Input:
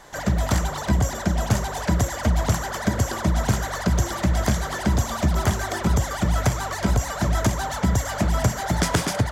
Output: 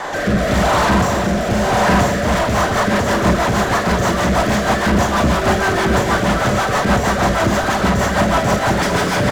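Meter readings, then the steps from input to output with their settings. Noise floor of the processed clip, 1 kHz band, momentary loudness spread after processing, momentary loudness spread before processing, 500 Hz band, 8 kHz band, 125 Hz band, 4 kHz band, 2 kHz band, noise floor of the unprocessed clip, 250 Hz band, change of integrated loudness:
−20 dBFS, +11.5 dB, 2 LU, 2 LU, +12.5 dB, +3.0 dB, +2.5 dB, +8.5 dB, +12.0 dB, −31 dBFS, +8.5 dB, +7.5 dB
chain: single-tap delay 220 ms −6.5 dB
four-comb reverb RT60 0.34 s, combs from 30 ms, DRR 0.5 dB
mid-hump overdrive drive 36 dB, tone 1,200 Hz, clips at −6 dBFS
rotating-speaker cabinet horn 0.9 Hz, later 6.3 Hz, at 0:01.89
level +2 dB

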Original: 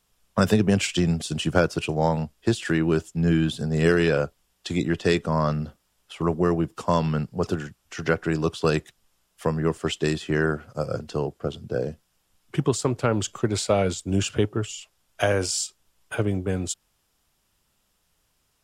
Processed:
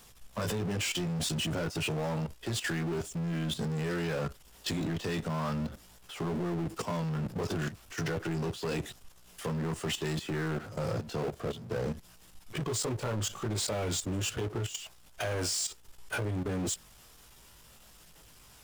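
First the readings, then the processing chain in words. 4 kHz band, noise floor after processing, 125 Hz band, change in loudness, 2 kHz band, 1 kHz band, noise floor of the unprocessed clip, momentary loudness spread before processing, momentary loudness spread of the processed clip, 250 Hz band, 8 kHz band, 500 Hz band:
−4.0 dB, −56 dBFS, −8.0 dB, −9.0 dB, −8.5 dB, −10.0 dB, −71 dBFS, 9 LU, 7 LU, −10.0 dB, −3.5 dB, −11.0 dB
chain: multi-voice chorus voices 2, 0.33 Hz, delay 18 ms, depth 1.2 ms
power curve on the samples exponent 0.5
output level in coarse steps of 12 dB
level −8 dB

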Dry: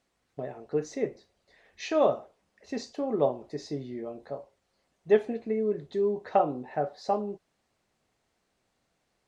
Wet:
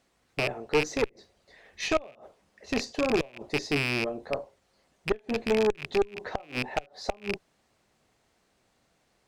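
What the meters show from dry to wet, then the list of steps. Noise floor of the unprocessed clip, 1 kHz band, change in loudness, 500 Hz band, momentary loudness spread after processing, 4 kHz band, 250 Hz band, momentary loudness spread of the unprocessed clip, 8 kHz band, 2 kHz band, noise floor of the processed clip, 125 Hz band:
−77 dBFS, −3.5 dB, 0.0 dB, −1.5 dB, 10 LU, +11.5 dB, +1.0 dB, 15 LU, can't be measured, +12.5 dB, −71 dBFS, +3.5 dB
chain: loose part that buzzes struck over −43 dBFS, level −21 dBFS
gate with flip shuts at −15 dBFS, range −30 dB
harmonic generator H 5 −14 dB, 6 −15 dB, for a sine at −13.5 dBFS

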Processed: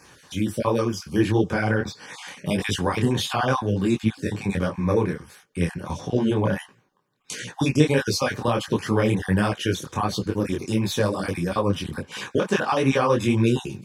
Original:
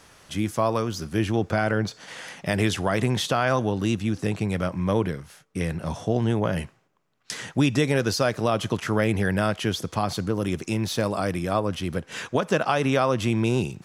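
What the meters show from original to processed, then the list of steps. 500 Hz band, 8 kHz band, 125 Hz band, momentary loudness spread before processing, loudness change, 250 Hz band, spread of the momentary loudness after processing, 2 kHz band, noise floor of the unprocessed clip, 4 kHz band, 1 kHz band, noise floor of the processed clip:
+1.0 dB, +1.0 dB, +1.0 dB, 8 LU, +1.5 dB, +2.0 dB, 10 LU, +0.5 dB, −60 dBFS, +1.0 dB, +0.5 dB, −58 dBFS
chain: time-frequency cells dropped at random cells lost 25%
notch comb filter 670 Hz
micro pitch shift up and down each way 51 cents
level +7 dB

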